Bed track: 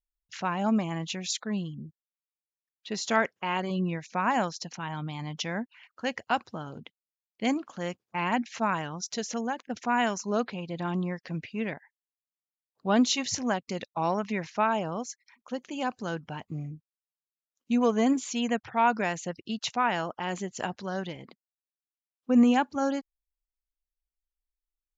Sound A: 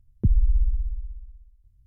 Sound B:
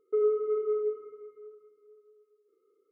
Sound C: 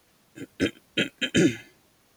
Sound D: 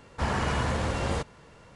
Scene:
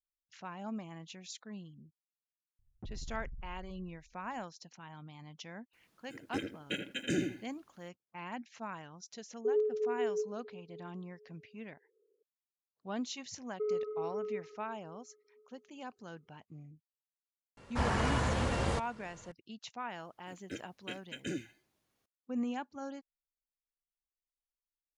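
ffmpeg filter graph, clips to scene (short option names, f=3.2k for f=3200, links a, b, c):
-filter_complex "[3:a]asplit=2[a][b];[2:a]asplit=2[c][d];[0:a]volume=-15dB[e];[1:a]asoftclip=type=tanh:threshold=-26dB[f];[a]asplit=2[g][h];[h]adelay=81,lowpass=f=1.6k:p=1,volume=-4.5dB,asplit=2[i][j];[j]adelay=81,lowpass=f=1.6k:p=1,volume=0.25,asplit=2[k][l];[l]adelay=81,lowpass=f=1.6k:p=1,volume=0.25[m];[g][i][k][m]amix=inputs=4:normalize=0[n];[c]lowpass=f=510:t=q:w=5.2[o];[f]atrim=end=1.86,asetpts=PTS-STARTPTS,volume=-15dB,afade=t=in:d=0.004:c=hsin,afade=t=out:st=1.856:d=0.004:c=hsin,adelay=2590[p];[n]atrim=end=2.16,asetpts=PTS-STARTPTS,volume=-12.5dB,afade=t=in:d=0.004:c=hsin,afade=t=out:st=2.156:d=0.004:c=hsin,adelay=252693S[q];[o]atrim=end=2.91,asetpts=PTS-STARTPTS,volume=-14dB,afade=t=in:d=0.004:c=hsin,afade=t=out:st=2.906:d=0.004:c=hsin,adelay=9320[r];[d]atrim=end=2.91,asetpts=PTS-STARTPTS,volume=-8.5dB,afade=t=in:d=0.004:c=hsin,afade=t=out:st=2.906:d=0.004:c=hsin,adelay=13470[s];[4:a]atrim=end=1.75,asetpts=PTS-STARTPTS,volume=-3.5dB,afade=t=in:d=0.004:c=hsin,afade=t=out:st=1.746:d=0.004:c=hsin,adelay=17570[t];[b]atrim=end=2.16,asetpts=PTS-STARTPTS,volume=-18dB,afade=t=in:d=0.004:c=hsin,afade=t=out:st=2.156:d=0.004:c=hsin,adelay=19900[u];[e][p][q][r][s][t][u]amix=inputs=7:normalize=0"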